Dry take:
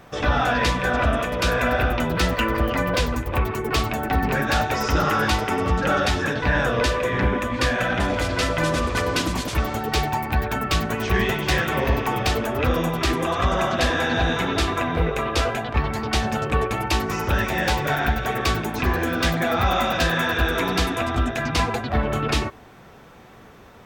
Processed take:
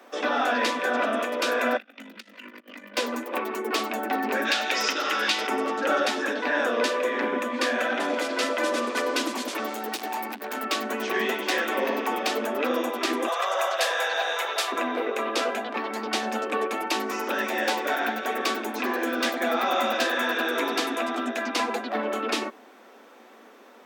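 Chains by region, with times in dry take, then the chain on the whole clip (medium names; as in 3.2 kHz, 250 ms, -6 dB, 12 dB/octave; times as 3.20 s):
1.77–2.97 s: FFT filter 130 Hz 0 dB, 400 Hz -23 dB, 1.1 kHz -22 dB, 2.2 kHz -9 dB, 12 kHz -16 dB + compressor with a negative ratio -30 dBFS + ring modulator 25 Hz
4.45–5.47 s: compression, threshold -21 dBFS + frequency weighting D
9.68–10.65 s: treble shelf 6.1 kHz +7.5 dB + overload inside the chain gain 22.5 dB + transformer saturation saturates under 120 Hz
13.28–14.72 s: steep high-pass 490 Hz + treble shelf 8.7 kHz +11.5 dB
whole clip: steep high-pass 220 Hz 96 dB/octave; peaking EQ 550 Hz +3 dB 0.26 oct; trim -3 dB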